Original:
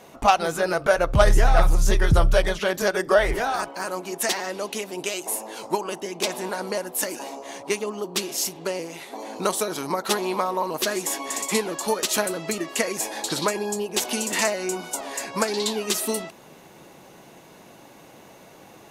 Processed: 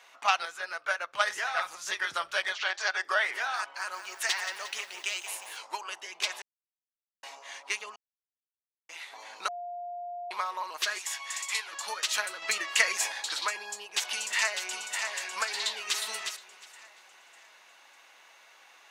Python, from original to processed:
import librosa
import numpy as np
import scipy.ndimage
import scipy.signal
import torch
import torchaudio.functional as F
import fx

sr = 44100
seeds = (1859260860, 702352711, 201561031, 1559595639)

y = fx.upward_expand(x, sr, threshold_db=-26.0, expansion=1.5, at=(0.45, 1.87))
y = fx.cabinet(y, sr, low_hz=360.0, low_slope=24, high_hz=7400.0, hz=(490.0, 760.0, 4400.0), db=(-6, 7, 4), at=(2.53, 3.05))
y = fx.echo_crushed(y, sr, ms=178, feedback_pct=55, bits=7, wet_db=-9.5, at=(3.64, 5.57))
y = fx.highpass(y, sr, hz=1200.0, slope=6, at=(10.98, 11.73))
y = fx.echo_throw(y, sr, start_s=13.85, length_s=1.2, ms=600, feedback_pct=45, wet_db=-6.0)
y = fx.echo_throw(y, sr, start_s=15.57, length_s=0.43, ms=360, feedback_pct=15, wet_db=-6.0)
y = fx.edit(y, sr, fx.silence(start_s=6.42, length_s=0.81),
    fx.silence(start_s=7.96, length_s=0.93),
    fx.bleep(start_s=9.48, length_s=0.83, hz=704.0, db=-21.5),
    fx.clip_gain(start_s=12.42, length_s=0.7, db=6.0), tone=tone)
y = scipy.signal.sosfilt(scipy.signal.cheby1(2, 1.0, 1600.0, 'highpass', fs=sr, output='sos'), y)
y = fx.peak_eq(y, sr, hz=13000.0, db=-14.5, octaves=1.1)